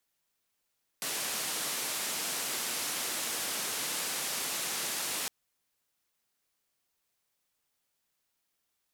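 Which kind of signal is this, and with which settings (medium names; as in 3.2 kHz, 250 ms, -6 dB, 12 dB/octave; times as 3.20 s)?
noise band 180–12000 Hz, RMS -34.5 dBFS 4.26 s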